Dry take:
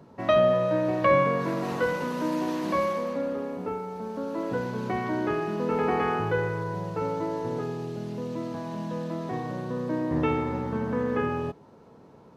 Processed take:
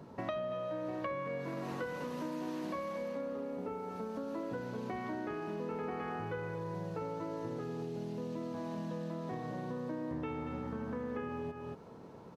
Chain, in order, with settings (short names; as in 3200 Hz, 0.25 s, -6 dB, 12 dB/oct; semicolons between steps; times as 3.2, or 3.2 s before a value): on a send: echo 0.231 s -10.5 dB; on the sum: compressor 6:1, threshold -37 dBFS, peak gain reduction 19.5 dB